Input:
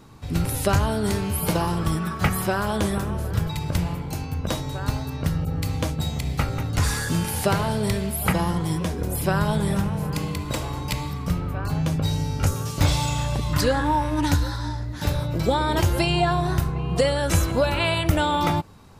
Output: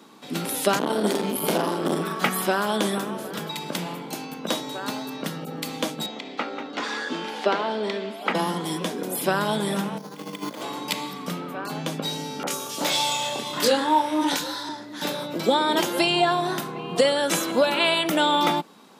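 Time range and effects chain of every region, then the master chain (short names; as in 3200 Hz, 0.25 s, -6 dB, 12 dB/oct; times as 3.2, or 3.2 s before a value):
0.79–2.2 low shelf 500 Hz +5 dB + doubler 43 ms -5.5 dB + core saturation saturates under 540 Hz
6.06–8.35 HPF 240 Hz 24 dB/oct + air absorption 180 m
9.98–10.62 negative-ratio compressor -31 dBFS, ratio -0.5 + careless resampling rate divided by 8×, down filtered, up hold
12.43–14.69 bell 160 Hz -3.5 dB 2.4 oct + doubler 26 ms -4 dB + three bands offset in time mids, highs, lows 40/70 ms, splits 160/1400 Hz
whole clip: steep high-pass 200 Hz 36 dB/oct; bell 3400 Hz +6 dB 0.35 oct; gain +1.5 dB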